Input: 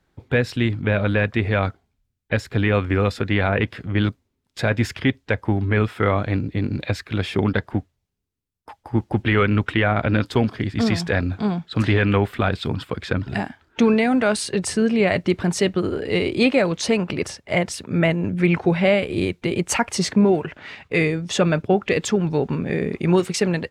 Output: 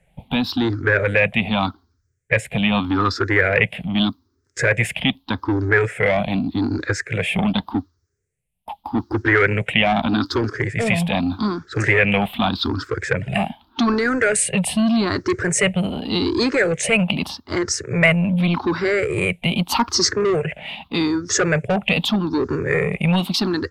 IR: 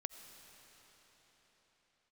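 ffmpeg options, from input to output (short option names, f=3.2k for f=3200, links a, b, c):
-filter_complex "[0:a]afftfilt=real='re*pow(10,22/40*sin(2*PI*(0.5*log(max(b,1)*sr/1024/100)/log(2)-(0.83)*(pts-256)/sr)))':imag='im*pow(10,22/40*sin(2*PI*(0.5*log(max(b,1)*sr/1024/100)/log(2)-(0.83)*(pts-256)/sr)))':win_size=1024:overlap=0.75,acrossover=split=140|1200|3800[a][b][c][d];[a]acompressor=threshold=-31dB:ratio=6[e];[b]asoftclip=type=tanh:threshold=-17.5dB[f];[e][f][c][d]amix=inputs=4:normalize=0,volume=1dB"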